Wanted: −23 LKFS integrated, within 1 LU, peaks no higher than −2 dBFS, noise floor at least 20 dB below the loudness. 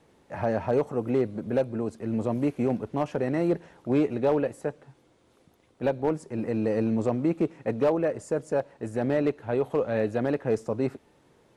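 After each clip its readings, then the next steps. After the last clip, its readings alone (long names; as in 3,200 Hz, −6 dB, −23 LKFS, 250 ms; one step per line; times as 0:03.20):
share of clipped samples 0.3%; peaks flattened at −16.0 dBFS; integrated loudness −28.0 LKFS; sample peak −16.0 dBFS; target loudness −23.0 LKFS
→ clipped peaks rebuilt −16 dBFS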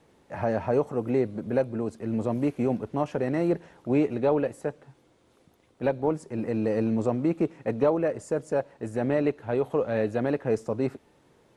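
share of clipped samples 0.0%; integrated loudness −27.5 LKFS; sample peak −11.0 dBFS; target loudness −23.0 LKFS
→ level +4.5 dB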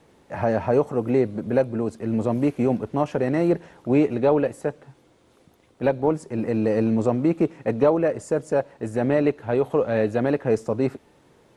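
integrated loudness −23.0 LKFS; sample peak −6.5 dBFS; background noise floor −58 dBFS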